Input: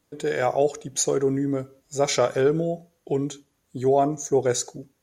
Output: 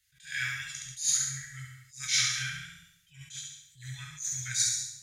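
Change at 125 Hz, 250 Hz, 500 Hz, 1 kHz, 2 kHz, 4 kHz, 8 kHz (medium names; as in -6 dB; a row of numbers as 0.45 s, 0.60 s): -11.5 dB, under -25 dB, under -40 dB, -23.0 dB, +1.0 dB, +3.0 dB, +2.0 dB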